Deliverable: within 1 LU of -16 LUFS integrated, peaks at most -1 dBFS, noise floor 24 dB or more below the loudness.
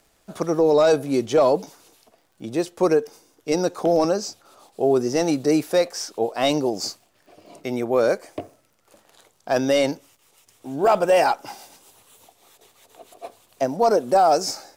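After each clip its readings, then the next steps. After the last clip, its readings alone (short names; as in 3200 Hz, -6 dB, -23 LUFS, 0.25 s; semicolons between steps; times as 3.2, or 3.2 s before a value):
ticks 49/s; loudness -21.0 LUFS; peak -9.5 dBFS; loudness target -16.0 LUFS
-> de-click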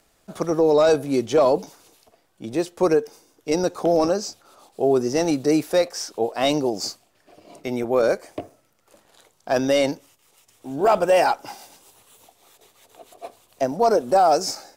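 ticks 0.81/s; loudness -21.0 LUFS; peak -8.5 dBFS; loudness target -16.0 LUFS
-> gain +5 dB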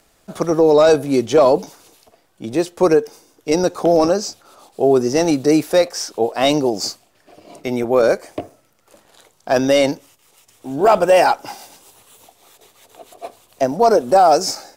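loudness -16.0 LUFS; peak -3.5 dBFS; noise floor -59 dBFS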